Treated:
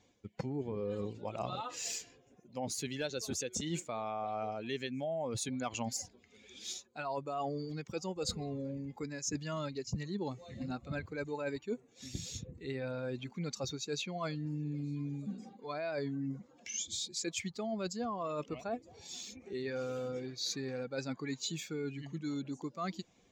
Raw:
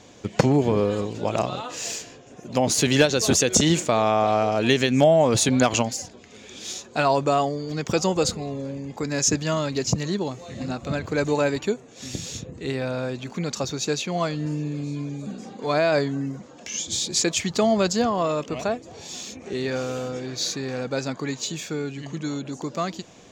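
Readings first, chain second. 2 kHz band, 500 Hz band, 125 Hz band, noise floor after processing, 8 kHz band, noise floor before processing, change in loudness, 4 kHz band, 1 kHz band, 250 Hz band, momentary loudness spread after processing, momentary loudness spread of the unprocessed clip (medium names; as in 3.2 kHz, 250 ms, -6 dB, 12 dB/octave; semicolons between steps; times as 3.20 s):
-15.5 dB, -16.0 dB, -14.0 dB, -66 dBFS, -15.0 dB, -47 dBFS, -15.0 dB, -14.0 dB, -15.5 dB, -14.5 dB, 6 LU, 14 LU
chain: expander on every frequency bin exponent 1.5; reverse; compression 16:1, threshold -35 dBFS, peak gain reduction 22 dB; reverse; trim +1 dB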